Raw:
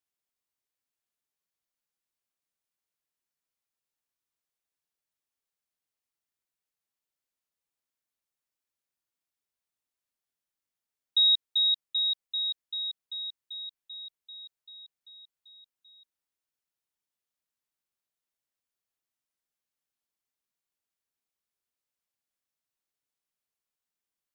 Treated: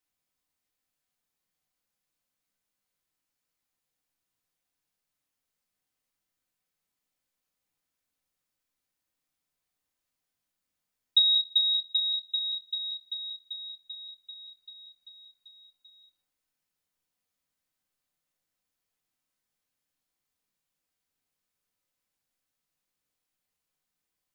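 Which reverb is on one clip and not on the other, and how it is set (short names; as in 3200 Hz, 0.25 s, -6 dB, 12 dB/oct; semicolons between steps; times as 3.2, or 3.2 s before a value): shoebox room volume 400 m³, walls furnished, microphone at 2 m; gain +2.5 dB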